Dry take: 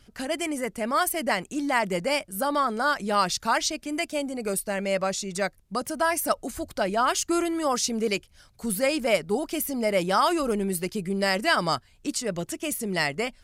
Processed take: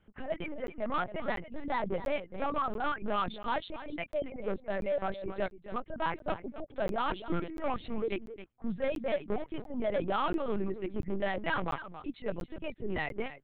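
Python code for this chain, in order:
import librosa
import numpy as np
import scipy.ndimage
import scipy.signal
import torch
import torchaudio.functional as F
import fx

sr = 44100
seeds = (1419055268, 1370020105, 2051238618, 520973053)

y = fx.wiener(x, sr, points=9)
y = fx.lowpass(y, sr, hz=2600.0, slope=6)
y = fx.dereverb_blind(y, sr, rt60_s=1.5)
y = scipy.signal.sosfilt(scipy.signal.butter(4, 110.0, 'highpass', fs=sr, output='sos'), y)
y = y + 0.36 * np.pad(y, (int(5.1 * sr / 1000.0), 0))[:len(y)]
y = np.clip(y, -10.0 ** (-22.0 / 20.0), 10.0 ** (-22.0 / 20.0))
y = y + 10.0 ** (-12.5 / 20.0) * np.pad(y, (int(269 * sr / 1000.0), 0))[:len(y)]
y = fx.lpc_vocoder(y, sr, seeds[0], excitation='pitch_kept', order=8)
y = fx.buffer_crackle(y, sr, first_s=0.67, period_s=0.69, block=512, kind='zero')
y = F.gain(torch.from_numpy(y), -4.5).numpy()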